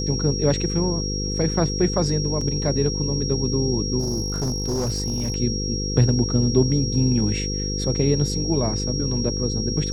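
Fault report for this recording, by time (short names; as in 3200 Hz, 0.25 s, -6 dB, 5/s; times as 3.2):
buzz 50 Hz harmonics 10 -27 dBFS
tone 5600 Hz -28 dBFS
2.41 gap 3.9 ms
3.99–5.36 clipped -20 dBFS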